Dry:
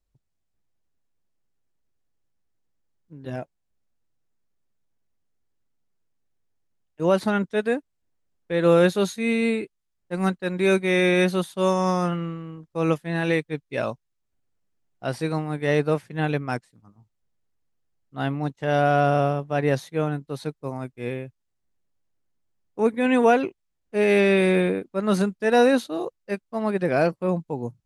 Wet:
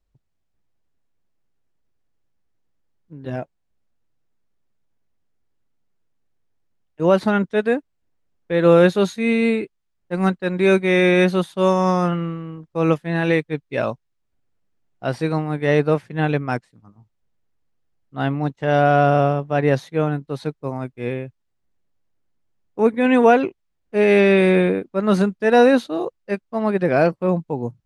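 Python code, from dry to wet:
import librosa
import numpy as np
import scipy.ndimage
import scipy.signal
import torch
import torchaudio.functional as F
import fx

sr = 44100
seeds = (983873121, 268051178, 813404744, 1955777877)

y = fx.high_shelf(x, sr, hz=6500.0, db=-12.0)
y = y * librosa.db_to_amplitude(4.5)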